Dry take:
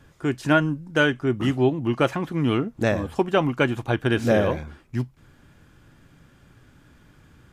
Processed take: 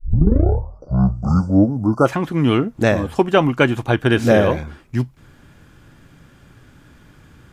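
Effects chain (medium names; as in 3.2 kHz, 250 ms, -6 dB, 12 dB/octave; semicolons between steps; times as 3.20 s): tape start-up on the opening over 2.07 s; spectral selection erased 0.44–2.06 s, 1.5–4.5 kHz; trim +6 dB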